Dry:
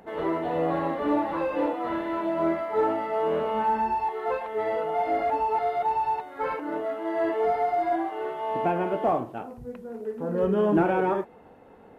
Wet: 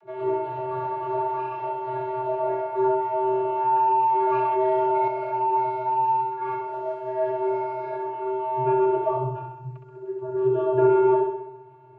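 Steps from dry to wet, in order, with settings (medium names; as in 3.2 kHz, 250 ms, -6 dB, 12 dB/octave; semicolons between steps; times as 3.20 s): 6.64–7.13 s: companding laws mixed up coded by A; vocoder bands 32, square 128 Hz; band-stop 1.9 kHz, Q 24; flutter echo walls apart 11.1 m, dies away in 0.86 s; 3.73–5.08 s: level flattener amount 70%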